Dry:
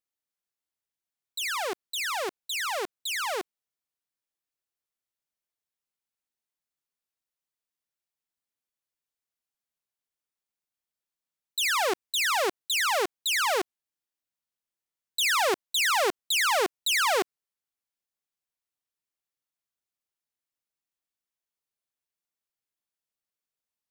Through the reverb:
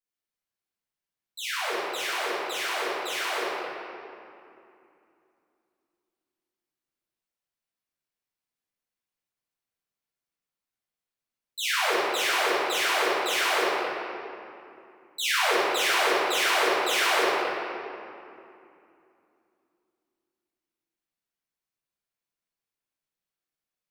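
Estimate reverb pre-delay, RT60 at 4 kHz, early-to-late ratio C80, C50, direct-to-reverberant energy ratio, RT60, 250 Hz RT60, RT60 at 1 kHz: 3 ms, 1.7 s, -2.0 dB, -4.0 dB, -12.5 dB, 2.7 s, 3.6 s, 2.7 s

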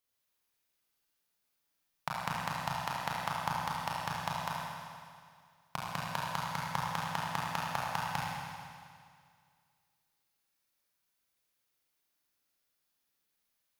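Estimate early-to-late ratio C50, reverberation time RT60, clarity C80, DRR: -3.0 dB, 2.1 s, -0.5 dB, -5.0 dB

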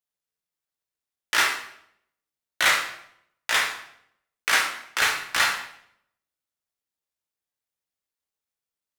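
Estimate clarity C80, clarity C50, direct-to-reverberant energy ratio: 8.5 dB, 5.5 dB, -2.0 dB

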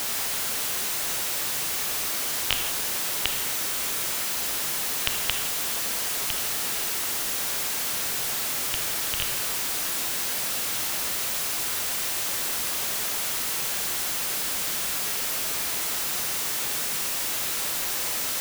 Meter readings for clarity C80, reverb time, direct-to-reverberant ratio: 8.5 dB, no single decay rate, 5.0 dB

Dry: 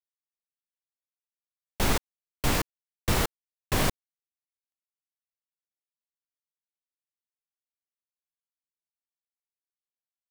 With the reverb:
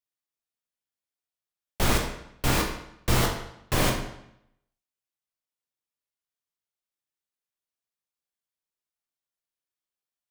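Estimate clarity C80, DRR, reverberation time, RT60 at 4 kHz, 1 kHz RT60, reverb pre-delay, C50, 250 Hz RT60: 8.0 dB, 1.0 dB, 0.75 s, 0.65 s, 0.75 s, 15 ms, 5.5 dB, 0.80 s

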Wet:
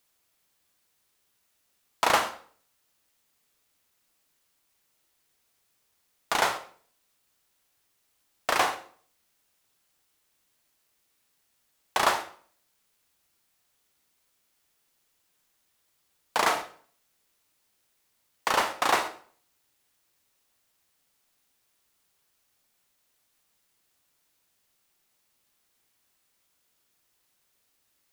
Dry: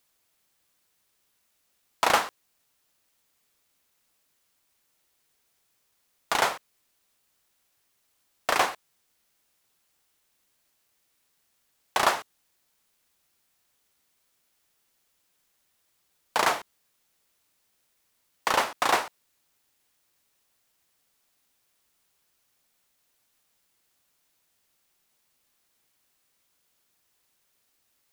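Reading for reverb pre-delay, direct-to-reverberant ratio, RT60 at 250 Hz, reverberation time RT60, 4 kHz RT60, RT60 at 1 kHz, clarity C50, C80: 31 ms, 8.5 dB, 0.55 s, 0.50 s, 0.40 s, 0.50 s, 11.5 dB, 15.5 dB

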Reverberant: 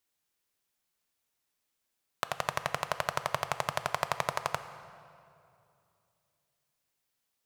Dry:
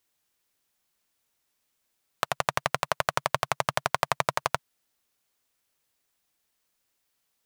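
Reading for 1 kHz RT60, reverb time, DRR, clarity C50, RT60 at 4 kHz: 2.5 s, 2.7 s, 10.5 dB, 11.5 dB, 1.8 s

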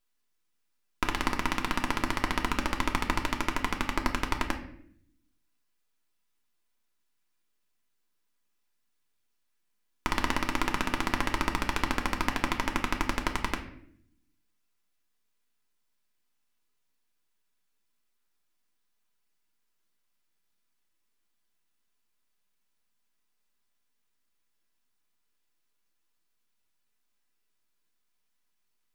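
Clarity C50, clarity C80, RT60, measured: 10.5 dB, 13.0 dB, 0.65 s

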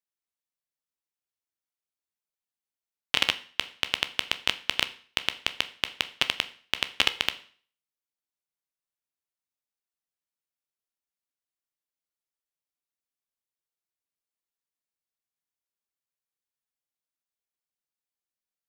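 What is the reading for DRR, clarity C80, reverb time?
10.5 dB, 20.0 dB, 0.45 s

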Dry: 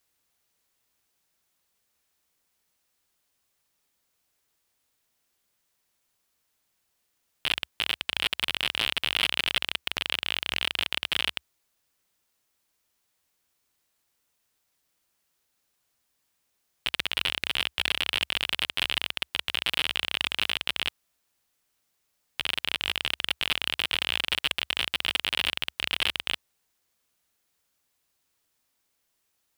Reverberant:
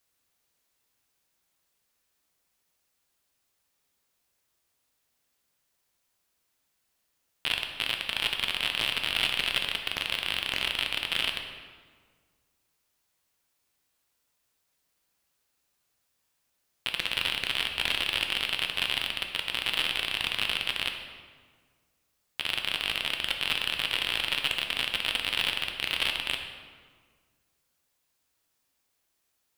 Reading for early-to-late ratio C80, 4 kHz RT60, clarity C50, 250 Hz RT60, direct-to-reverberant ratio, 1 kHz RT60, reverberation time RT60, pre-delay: 7.5 dB, 1.1 s, 6.0 dB, 1.9 s, 3.5 dB, 1.6 s, 1.7 s, 7 ms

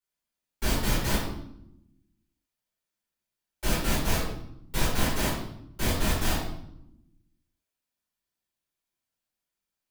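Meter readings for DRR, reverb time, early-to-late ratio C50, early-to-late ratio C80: -10.5 dB, 0.80 s, 2.0 dB, 5.5 dB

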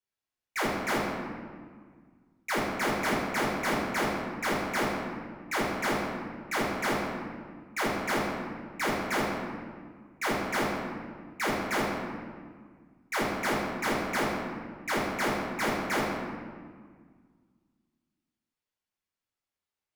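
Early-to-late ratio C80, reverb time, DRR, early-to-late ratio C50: 2.0 dB, 1.8 s, -7.5 dB, -0.5 dB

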